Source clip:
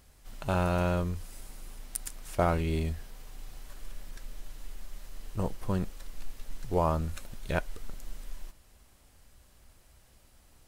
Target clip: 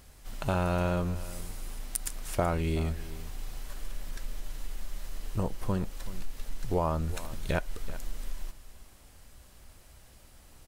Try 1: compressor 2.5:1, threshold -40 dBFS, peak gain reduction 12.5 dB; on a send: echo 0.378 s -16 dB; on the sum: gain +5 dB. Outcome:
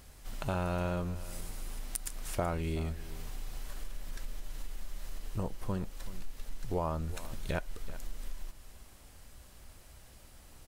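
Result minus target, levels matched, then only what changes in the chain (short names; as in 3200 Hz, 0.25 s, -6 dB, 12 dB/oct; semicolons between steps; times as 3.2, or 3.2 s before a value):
compressor: peak gain reduction +5 dB
change: compressor 2.5:1, threshold -32 dBFS, peak gain reduction 7.5 dB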